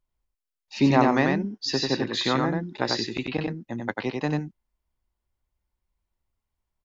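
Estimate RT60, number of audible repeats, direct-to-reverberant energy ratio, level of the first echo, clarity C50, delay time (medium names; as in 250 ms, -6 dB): no reverb, 1, no reverb, -3.0 dB, no reverb, 93 ms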